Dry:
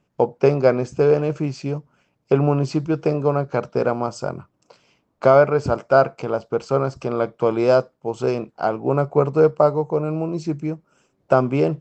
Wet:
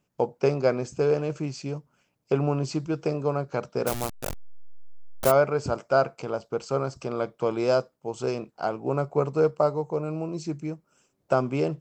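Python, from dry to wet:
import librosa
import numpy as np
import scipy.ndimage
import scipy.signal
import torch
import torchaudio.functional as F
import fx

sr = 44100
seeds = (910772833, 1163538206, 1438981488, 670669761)

y = fx.delta_hold(x, sr, step_db=-20.0, at=(3.86, 5.3), fade=0.02)
y = fx.high_shelf(y, sr, hz=5100.0, db=12.0)
y = y * librosa.db_to_amplitude(-7.0)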